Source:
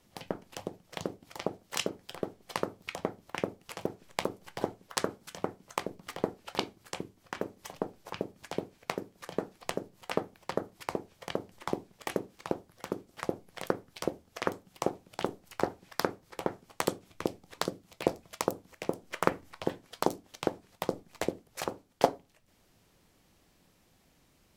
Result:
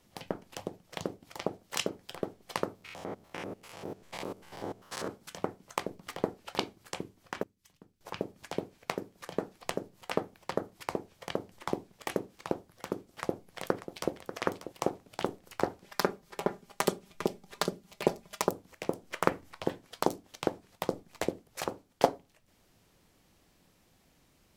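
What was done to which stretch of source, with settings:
2.75–5.08 s: spectrogram pixelated in time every 100 ms
7.43–8.01 s: amplifier tone stack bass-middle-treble 6-0-2
13.05–14.13 s: echo throw 590 ms, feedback 30%, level -11.5 dB
15.84–18.50 s: comb 5 ms

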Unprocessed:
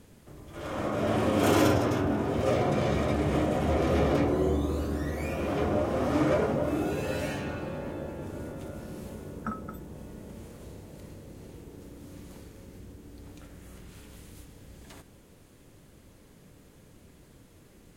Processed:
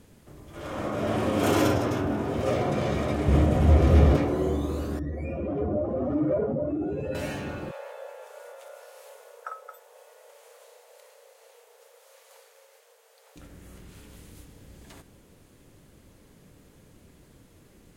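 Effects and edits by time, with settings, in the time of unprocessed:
3.28–4.17 s: peaking EQ 67 Hz +14 dB 2.5 oct
4.99–7.15 s: spectral contrast enhancement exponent 1.8
7.71–13.36 s: steep high-pass 460 Hz 96 dB/octave

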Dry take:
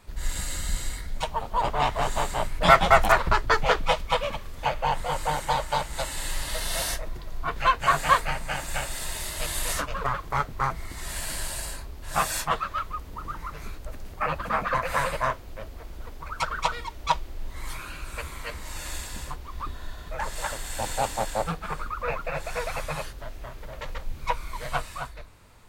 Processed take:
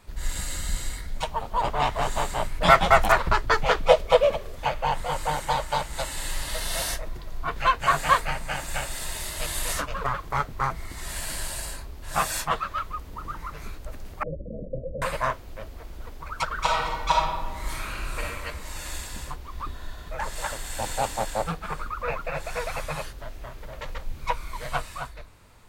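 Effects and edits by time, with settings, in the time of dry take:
3.85–4.56 s: high-order bell 510 Hz +11.5 dB 1.1 oct
14.23–15.02 s: steep low-pass 590 Hz 96 dB/octave
16.56–18.26 s: reverb throw, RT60 1.2 s, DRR -3 dB

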